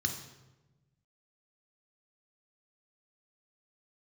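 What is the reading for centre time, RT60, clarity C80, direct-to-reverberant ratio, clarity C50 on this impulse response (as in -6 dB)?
20 ms, 1.1 s, 10.5 dB, 4.5 dB, 8.0 dB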